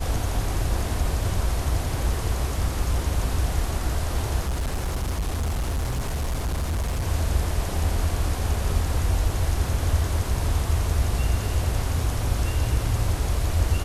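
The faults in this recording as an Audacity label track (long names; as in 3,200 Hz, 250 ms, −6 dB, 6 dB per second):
4.400000	7.040000	clipping −22 dBFS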